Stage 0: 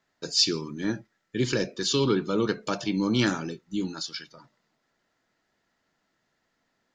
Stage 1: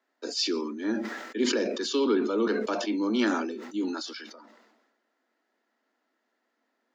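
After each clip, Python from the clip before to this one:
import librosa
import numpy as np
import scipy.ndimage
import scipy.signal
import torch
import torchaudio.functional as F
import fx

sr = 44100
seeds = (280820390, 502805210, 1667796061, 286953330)

y = scipy.signal.sosfilt(scipy.signal.butter(16, 220.0, 'highpass', fs=sr, output='sos'), x)
y = fx.high_shelf(y, sr, hz=2900.0, db=-10.0)
y = fx.sustainer(y, sr, db_per_s=45.0)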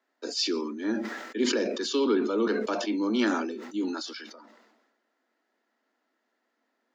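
y = x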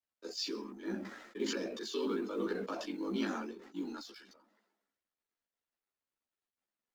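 y = fx.law_mismatch(x, sr, coded='A')
y = y * np.sin(2.0 * np.pi * 23.0 * np.arange(len(y)) / sr)
y = fx.ensemble(y, sr)
y = F.gain(torch.from_numpy(y), -3.5).numpy()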